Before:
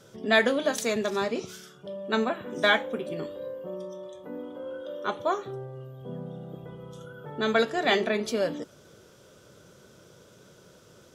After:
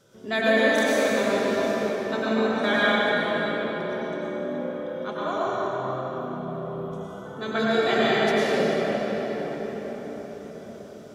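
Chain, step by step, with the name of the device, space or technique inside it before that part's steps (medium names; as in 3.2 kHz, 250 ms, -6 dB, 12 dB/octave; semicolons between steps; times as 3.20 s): cathedral (reverberation RT60 6.2 s, pre-delay 89 ms, DRR -9.5 dB); trim -6 dB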